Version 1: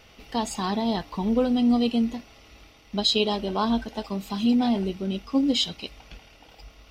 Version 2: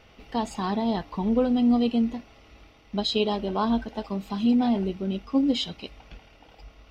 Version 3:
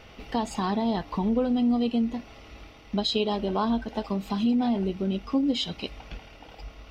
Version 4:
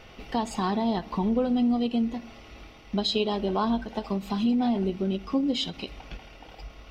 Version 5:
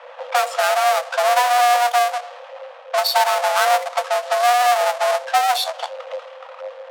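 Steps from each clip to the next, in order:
treble shelf 4 kHz -11.5 dB
compression 2:1, threshold -33 dBFS, peak gain reduction 9 dB; trim +5.5 dB
reverberation RT60 0.85 s, pre-delay 3 ms, DRR 14.5 dB; endings held to a fixed fall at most 290 dB/s
square wave that keeps the level; level-controlled noise filter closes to 1.9 kHz, open at -19.5 dBFS; frequency shift +480 Hz; trim +4.5 dB

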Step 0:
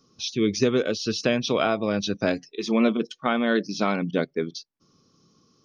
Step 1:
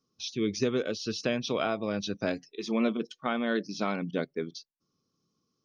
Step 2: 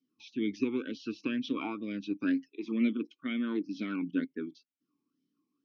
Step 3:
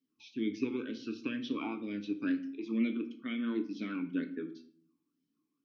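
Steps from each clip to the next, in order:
gate -49 dBFS, range -10 dB; trim -6.5 dB
talking filter i-u 2.1 Hz; trim +8.5 dB
simulated room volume 70 m³, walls mixed, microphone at 0.32 m; trim -3 dB

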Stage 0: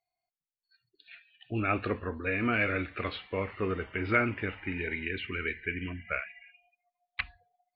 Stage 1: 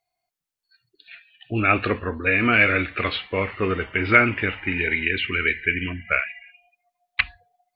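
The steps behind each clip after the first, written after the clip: dynamic bell 2.8 kHz, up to +6 dB, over -45 dBFS, Q 0.71; trim +7.5 dB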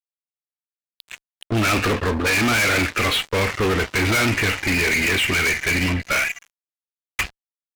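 fuzz box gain 31 dB, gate -40 dBFS; trim -4 dB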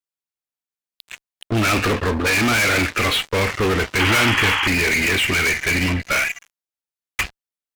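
painted sound noise, 3.99–4.68 s, 780–3400 Hz -22 dBFS; trim +1 dB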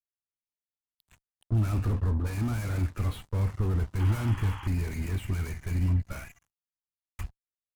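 FFT filter 100 Hz 0 dB, 480 Hz -20 dB, 950 Hz -17 dB, 2.3 kHz -30 dB, 5.9 kHz -25 dB, 10 kHz -19 dB

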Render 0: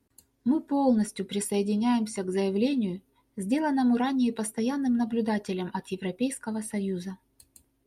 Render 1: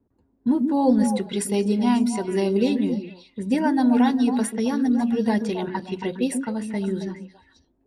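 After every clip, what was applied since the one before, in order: level-controlled noise filter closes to 820 Hz, open at -25.5 dBFS; hum notches 60/120/180 Hz; repeats whose band climbs or falls 136 ms, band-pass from 270 Hz, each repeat 1.4 oct, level -3 dB; trim +4 dB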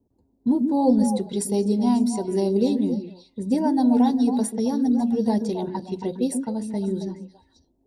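high-order bell 1.9 kHz -13.5 dB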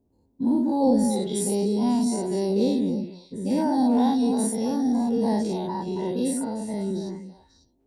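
every event in the spectrogram widened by 120 ms; trim -5.5 dB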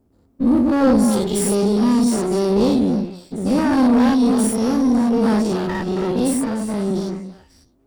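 comb filter that takes the minimum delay 0.39 ms; saturation -14.5 dBFS, distortion -22 dB; trim +8 dB

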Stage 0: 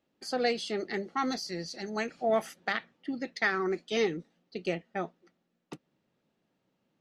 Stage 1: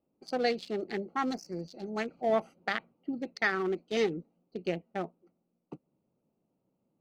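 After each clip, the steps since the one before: local Wiener filter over 25 samples; spectral replace 1.36–1.60 s, 2.4–5 kHz after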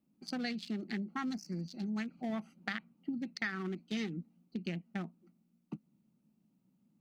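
FFT filter 100 Hz 0 dB, 210 Hz +12 dB, 470 Hz -10 dB, 1.7 kHz +4 dB; compression 3:1, threshold -35 dBFS, peak gain reduction 11.5 dB; trim -1.5 dB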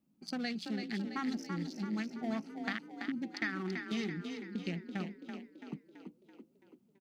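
frequency-shifting echo 333 ms, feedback 53%, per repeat +31 Hz, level -6.5 dB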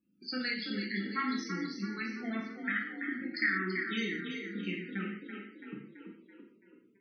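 FFT filter 210 Hz 0 dB, 400 Hz +4 dB, 760 Hz -6 dB, 1.4 kHz +9 dB; loudest bins only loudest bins 32; gated-style reverb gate 220 ms falling, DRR -2 dB; trim -4.5 dB

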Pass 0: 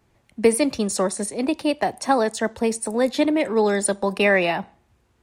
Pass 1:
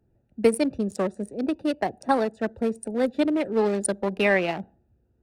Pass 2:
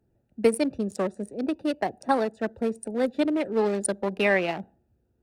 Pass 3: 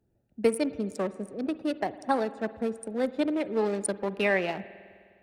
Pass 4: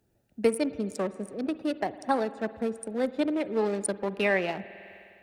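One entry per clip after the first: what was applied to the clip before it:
local Wiener filter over 41 samples; trim -2 dB
bass shelf 120 Hz -4.5 dB; trim -1 dB
spring tank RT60 2 s, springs 51 ms, chirp 35 ms, DRR 15 dB; trim -3 dB
tape noise reduction on one side only encoder only

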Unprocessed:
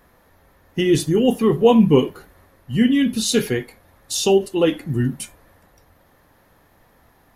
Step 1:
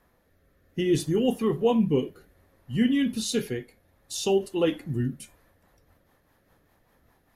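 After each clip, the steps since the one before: rotary cabinet horn 0.6 Hz, later 5 Hz, at 4.93 s; trim -6.5 dB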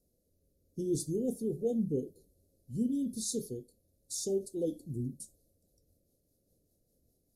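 inverse Chebyshev band-stop 920–2800 Hz, stop band 40 dB; peaking EQ 8.8 kHz +8.5 dB 1.1 oct; trim -9 dB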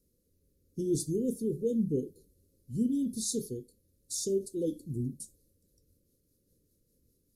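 Butterworth band-stop 750 Hz, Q 1.3; trim +2.5 dB

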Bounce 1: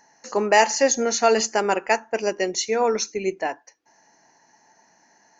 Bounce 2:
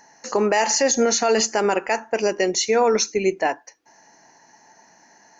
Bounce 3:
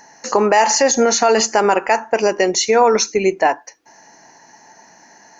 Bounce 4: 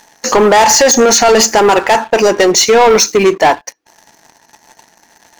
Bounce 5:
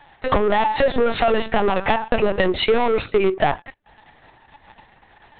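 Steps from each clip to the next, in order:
peak limiter -15.5 dBFS, peak gain reduction 10.5 dB; trim +5.5 dB
dynamic bell 970 Hz, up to +6 dB, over -33 dBFS, Q 1.1; in parallel at +1 dB: compression, threshold -23 dBFS, peak gain reduction 12 dB
waveshaping leveller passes 3
LPC vocoder at 8 kHz pitch kept; compression, threshold -12 dBFS, peak gain reduction 10 dB; trim -2 dB

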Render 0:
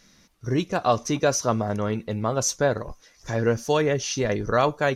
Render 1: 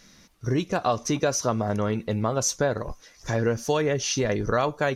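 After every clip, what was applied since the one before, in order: compression 2.5:1, threshold -25 dBFS, peak gain reduction 7.5 dB; trim +3 dB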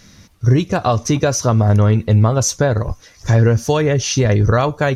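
peaking EQ 91 Hz +14 dB 1.2 oct; trim +6.5 dB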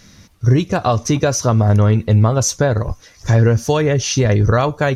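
no audible change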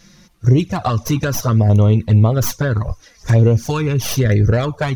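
tracing distortion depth 0.11 ms; touch-sensitive flanger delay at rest 6 ms, full sweep at -8 dBFS; trim +1 dB

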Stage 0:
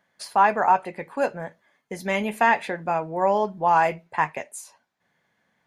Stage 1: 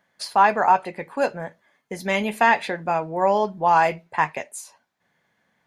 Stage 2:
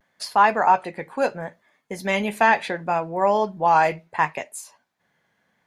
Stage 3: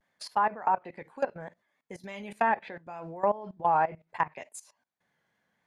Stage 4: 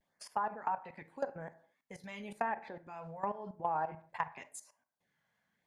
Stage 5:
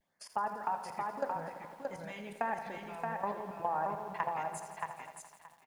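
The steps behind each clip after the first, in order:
dynamic bell 4.3 kHz, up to +6 dB, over -46 dBFS, Q 1.5; trim +1.5 dB
vibrato 0.71 Hz 47 cents
level held to a coarse grid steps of 18 dB; low-pass that closes with the level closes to 1.5 kHz, closed at -19 dBFS; vibrato 3.4 Hz 38 cents; trim -4.5 dB
LFO notch sine 0.89 Hz 310–4200 Hz; compression, threshold -27 dBFS, peak gain reduction 7 dB; on a send at -15 dB: reverberation, pre-delay 23 ms; on the sum: trim -3.5 dB
feedback delay 625 ms, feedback 15%, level -3.5 dB; bit-crushed delay 84 ms, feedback 80%, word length 10-bit, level -11 dB

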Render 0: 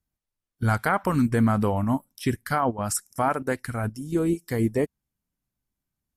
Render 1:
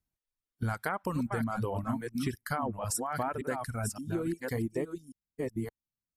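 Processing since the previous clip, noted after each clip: chunks repeated in reverse 569 ms, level -5.5 dB; reverb removal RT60 1.2 s; compression, threshold -25 dBFS, peak gain reduction 8 dB; trim -3.5 dB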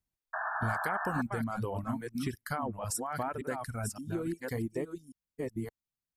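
painted sound noise, 0.33–1.22 s, 610–1800 Hz -33 dBFS; trim -2 dB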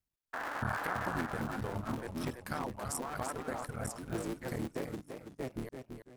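cycle switcher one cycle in 3, muted; modulated delay 335 ms, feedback 31%, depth 130 cents, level -7 dB; trim -2 dB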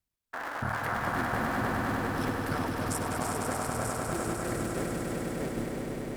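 echo with a slow build-up 100 ms, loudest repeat 5, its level -6 dB; trim +2 dB

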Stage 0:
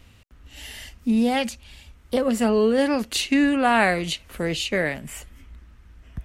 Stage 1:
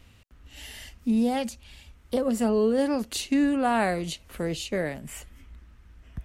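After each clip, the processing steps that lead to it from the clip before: dynamic bell 2.3 kHz, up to -8 dB, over -39 dBFS, Q 0.77; trim -3 dB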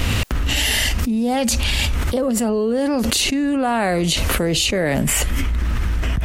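level flattener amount 100%; trim +1.5 dB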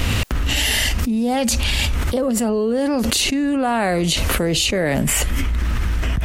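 tape noise reduction on one side only encoder only

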